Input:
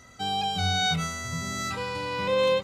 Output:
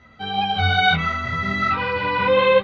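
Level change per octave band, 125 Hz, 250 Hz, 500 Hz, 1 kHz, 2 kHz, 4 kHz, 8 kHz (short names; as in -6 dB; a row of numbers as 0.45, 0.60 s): +6.0 dB, +6.0 dB, +7.5 dB, +9.0 dB, +11.5 dB, +4.0 dB, under -15 dB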